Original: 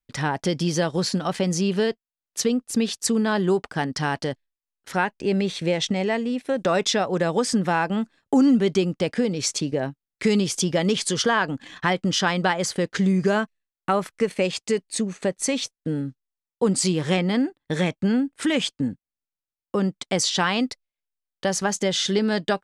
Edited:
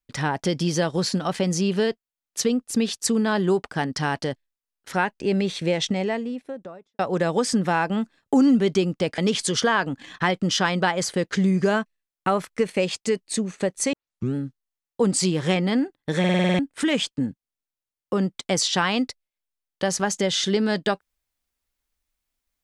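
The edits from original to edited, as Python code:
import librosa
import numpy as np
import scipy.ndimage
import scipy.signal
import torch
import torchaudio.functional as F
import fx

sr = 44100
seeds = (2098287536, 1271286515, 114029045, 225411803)

y = fx.studio_fade_out(x, sr, start_s=5.8, length_s=1.19)
y = fx.edit(y, sr, fx.cut(start_s=9.18, length_s=1.62),
    fx.tape_start(start_s=15.55, length_s=0.42),
    fx.stutter_over(start_s=17.81, slice_s=0.05, count=8), tone=tone)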